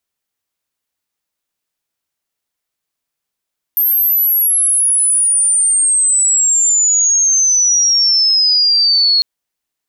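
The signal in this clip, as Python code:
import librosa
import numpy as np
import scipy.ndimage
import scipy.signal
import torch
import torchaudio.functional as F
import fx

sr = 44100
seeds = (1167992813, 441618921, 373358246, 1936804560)

y = fx.chirp(sr, length_s=5.45, from_hz=13000.0, to_hz=4300.0, law='logarithmic', from_db=-10.0, to_db=-8.5)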